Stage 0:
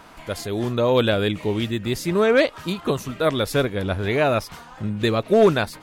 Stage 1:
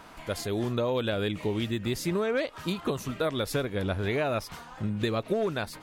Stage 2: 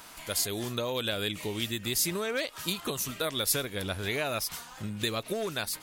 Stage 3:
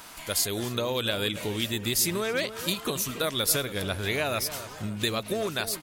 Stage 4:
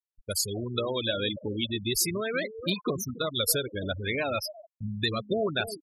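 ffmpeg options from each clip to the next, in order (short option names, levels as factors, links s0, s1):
-af "acompressor=threshold=0.0891:ratio=12,volume=0.708"
-af "crystalizer=i=6.5:c=0,volume=0.501"
-filter_complex "[0:a]asplit=2[s0][s1];[s1]adelay=280,lowpass=f=1400:p=1,volume=0.282,asplit=2[s2][s3];[s3]adelay=280,lowpass=f=1400:p=1,volume=0.5,asplit=2[s4][s5];[s5]adelay=280,lowpass=f=1400:p=1,volume=0.5,asplit=2[s6][s7];[s7]adelay=280,lowpass=f=1400:p=1,volume=0.5,asplit=2[s8][s9];[s9]adelay=280,lowpass=f=1400:p=1,volume=0.5[s10];[s0][s2][s4][s6][s8][s10]amix=inputs=6:normalize=0,volume=1.41"
-af "aphaser=in_gain=1:out_gain=1:delay=3.8:decay=0.26:speed=0.36:type=sinusoidal,afftfilt=real='re*gte(hypot(re,im),0.0708)':imag='im*gte(hypot(re,im),0.0708)':win_size=1024:overlap=0.75,agate=range=0.0224:threshold=0.00447:ratio=3:detection=peak"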